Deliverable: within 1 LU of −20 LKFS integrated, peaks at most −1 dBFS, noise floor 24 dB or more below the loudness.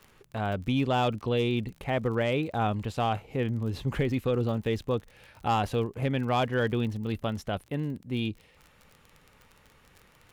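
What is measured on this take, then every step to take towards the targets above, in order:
crackle rate 38 per second; integrated loudness −29.5 LKFS; sample peak −16.5 dBFS; target loudness −20.0 LKFS
→ click removal
level +9.5 dB

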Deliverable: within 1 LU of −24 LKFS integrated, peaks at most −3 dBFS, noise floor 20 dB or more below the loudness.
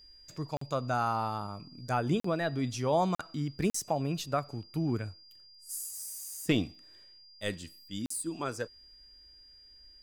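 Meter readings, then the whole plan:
number of dropouts 5; longest dropout 44 ms; interfering tone 4,800 Hz; level of the tone −54 dBFS; integrated loudness −33.5 LKFS; sample peak −17.0 dBFS; target loudness −24.0 LKFS
→ repair the gap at 0:00.57/0:02.20/0:03.15/0:03.70/0:08.06, 44 ms
notch filter 4,800 Hz, Q 30
level +9.5 dB

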